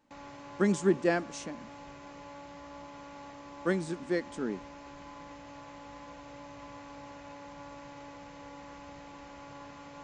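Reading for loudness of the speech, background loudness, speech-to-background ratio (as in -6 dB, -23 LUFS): -31.5 LUFS, -47.5 LUFS, 16.0 dB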